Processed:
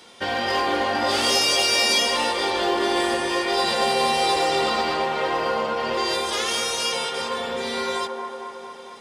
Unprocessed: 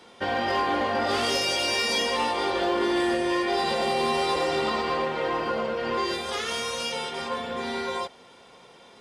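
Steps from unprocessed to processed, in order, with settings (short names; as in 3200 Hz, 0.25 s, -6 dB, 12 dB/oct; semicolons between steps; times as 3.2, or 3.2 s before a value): high shelf 2700 Hz +10 dB; band-limited delay 0.227 s, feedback 68%, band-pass 690 Hz, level -3 dB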